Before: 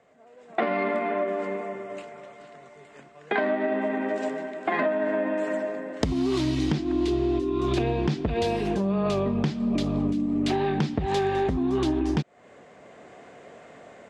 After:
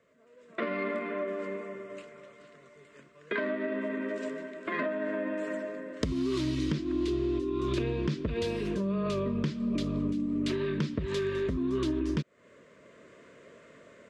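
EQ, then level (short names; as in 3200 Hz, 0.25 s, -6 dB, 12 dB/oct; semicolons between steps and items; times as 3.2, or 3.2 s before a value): Butterworth band-stop 780 Hz, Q 2.2; -5.0 dB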